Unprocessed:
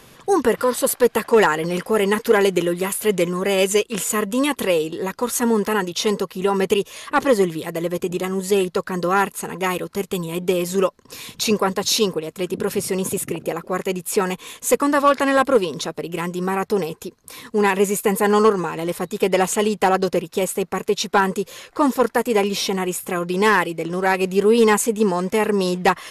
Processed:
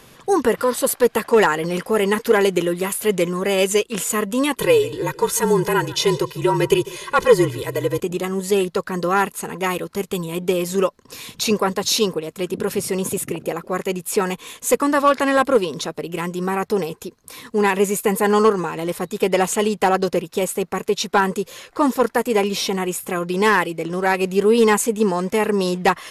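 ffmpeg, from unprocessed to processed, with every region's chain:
-filter_complex "[0:a]asettb=1/sr,asplit=3[a][b][c];[a]atrim=end=4.594[d];[b]atrim=start=4.59:end=8,asetpts=PTS-STARTPTS,afade=t=in:d=0.004:c=qsin,afade=t=out:st=3.406:d=0.004:c=qsin,aecho=1:1:147|294|441:0.112|0.037|0.0122,atrim=end_sample=150381,afreqshift=-39,aecho=1:1:2:0.78,atrim=end_sample=150381[e];[c]atrim=start=7.996[f];[d][e]acrossfade=d=0.004:c1=hsin:c2=qsin[g];[g][f]acrossfade=d=0.004:c1=qsin:c2=hsin"

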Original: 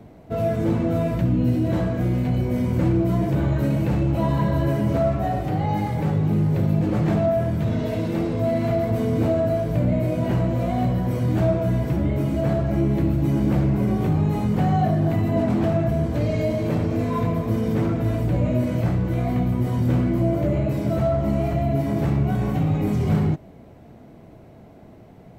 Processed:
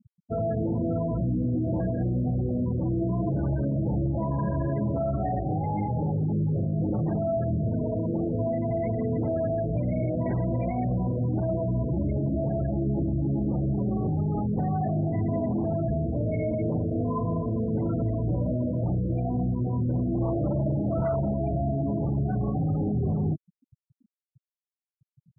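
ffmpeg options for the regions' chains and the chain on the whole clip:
-filter_complex "[0:a]asettb=1/sr,asplit=3[a][b][c];[a]atrim=end=8.754[d];[b]atrim=start=8.75:end=10.85,asetpts=PTS-STARTPTS,afade=t=in:d=0.004:c=qsin,afade=t=out:st=2.096:d=0.004:c=qsin,highshelf=f=2.8k:t=q:w=3:g=-7,acrusher=bits=5:mode=log:mix=0:aa=0.000001[e];[c]atrim=start=10.846[f];[d][e]acrossfade=d=0.004:c1=hsin:c2=qsin[g];[g][f]acrossfade=d=0.004:c1=qsin:c2=hsin,asettb=1/sr,asplit=3[h][i][j];[h]atrim=end=20.134[k];[i]atrim=start=20.13:end=21.34,asetpts=PTS-STARTPTS,afade=t=in:d=0.004:c=qsin,afade=t=out:st=1.206:d=0.004:c=qsin,asoftclip=type=hard:threshold=-19.5dB,asplit=2[l][m];[m]adelay=35,volume=-7dB[n];[l][n]amix=inputs=2:normalize=0,atrim=end_sample=53361[o];[j]atrim=start=21.336[p];[k][o]acrossfade=d=0.004:c1=hsin:c2=qsin[q];[q][p]acrossfade=d=0.004:c1=qsin:c2=hsin,afftfilt=real='re*gte(hypot(re,im),0.0631)':imag='im*gte(hypot(re,im),0.0631)':win_size=1024:overlap=0.75,alimiter=limit=-18dB:level=0:latency=1:release=22,volume=-2dB"

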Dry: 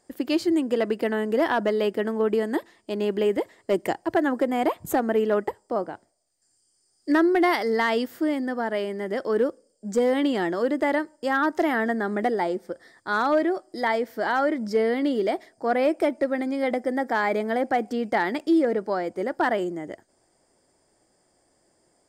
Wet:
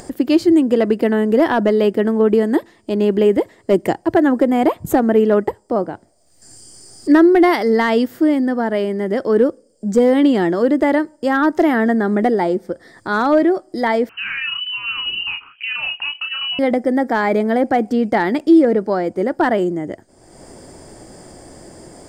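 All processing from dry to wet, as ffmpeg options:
-filter_complex "[0:a]asettb=1/sr,asplit=3[a][b][c];[a]atrim=end=14.094[d];[b]atrim=start=14.09:end=16.59,asetpts=PTS-STARTPTS,afade=t=in:d=0.004:c=qsin,afade=t=out:st=2.496:d=0.004:c=qsin,lowpass=f=2.7k:t=q:w=0.5098,lowpass=f=2.7k:t=q:w=0.6013,lowpass=f=2.7k:t=q:w=0.9,lowpass=f=2.7k:t=q:w=2.563,afreqshift=-3200,acompressor=threshold=-28dB:ratio=3:attack=3.2:release=140:knee=1:detection=peak,asplit=2[e][f];[f]adelay=31,volume=-4dB[g];[e][g]amix=inputs=2:normalize=0,atrim=end_sample=110250[h];[c]atrim=start=16.586[i];[d][h]acrossfade=d=0.004:c1=hsin:c2=qsin[j];[j][i]acrossfade=d=0.004:c1=qsin:c2=hsin,lowshelf=f=400:g=10,acompressor=mode=upward:threshold=-27dB:ratio=2.5,volume=4dB"

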